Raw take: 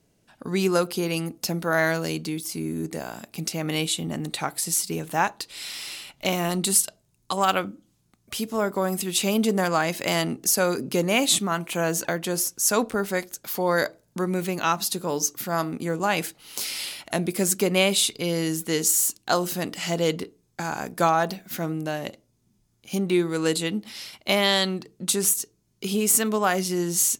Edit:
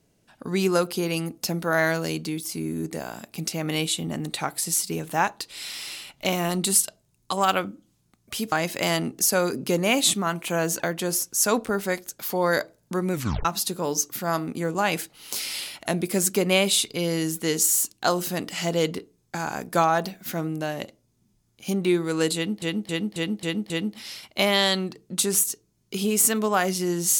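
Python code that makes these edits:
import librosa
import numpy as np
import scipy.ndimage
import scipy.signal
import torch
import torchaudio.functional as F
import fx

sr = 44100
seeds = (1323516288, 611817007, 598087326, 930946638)

y = fx.edit(x, sr, fx.cut(start_s=8.52, length_s=1.25),
    fx.tape_stop(start_s=14.38, length_s=0.32),
    fx.repeat(start_s=23.6, length_s=0.27, count=6), tone=tone)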